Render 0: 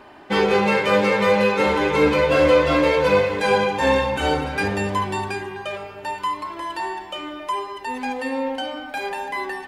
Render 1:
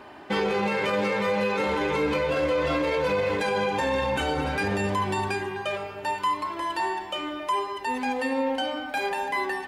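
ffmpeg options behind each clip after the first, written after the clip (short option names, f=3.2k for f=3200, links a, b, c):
-af "highpass=41,alimiter=limit=-17.5dB:level=0:latency=1:release=57"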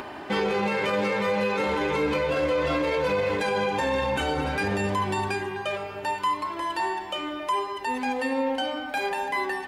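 -af "acompressor=mode=upward:threshold=-30dB:ratio=2.5"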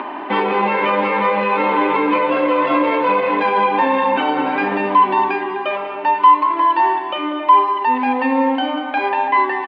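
-af "highpass=f=230:w=0.5412,highpass=f=230:w=1.3066,equalizer=f=280:t=q:w=4:g=5,equalizer=f=460:t=q:w=4:g=-5,equalizer=f=990:t=q:w=4:g=9,equalizer=f=1.5k:t=q:w=4:g=-3,lowpass=f=3k:w=0.5412,lowpass=f=3k:w=1.3066,aecho=1:1:193:0.237,volume=8dB"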